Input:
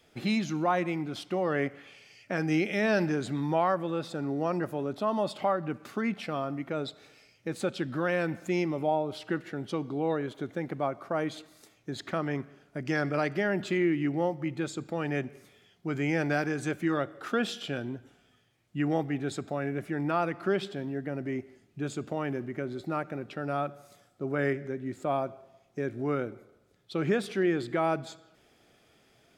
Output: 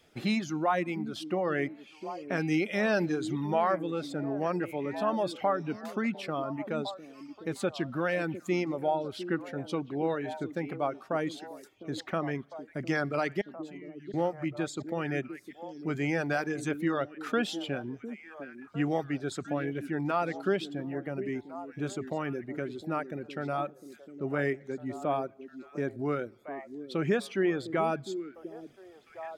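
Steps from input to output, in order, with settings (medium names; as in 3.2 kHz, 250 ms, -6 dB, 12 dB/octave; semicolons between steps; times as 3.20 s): 13.41–14.14 s: amplifier tone stack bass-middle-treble 6-0-2; reverb removal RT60 0.82 s; repeats whose band climbs or falls 704 ms, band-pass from 290 Hz, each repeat 1.4 oct, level -8 dB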